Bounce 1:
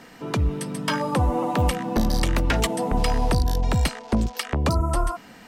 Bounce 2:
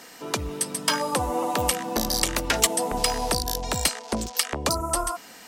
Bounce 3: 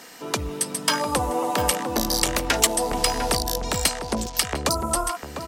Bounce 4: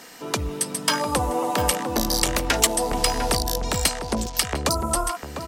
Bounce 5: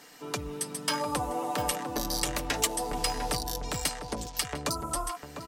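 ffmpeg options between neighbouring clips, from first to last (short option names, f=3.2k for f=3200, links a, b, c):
-af "bass=f=250:g=-12,treble=f=4k:g=11"
-filter_complex "[0:a]asplit=2[a][b];[b]adelay=699.7,volume=-8dB,highshelf=f=4k:g=-15.7[c];[a][c]amix=inputs=2:normalize=0,volume=1.5dB"
-af "lowshelf=f=140:g=3.5"
-af "aecho=1:1:6.8:0.49,volume=-9dB"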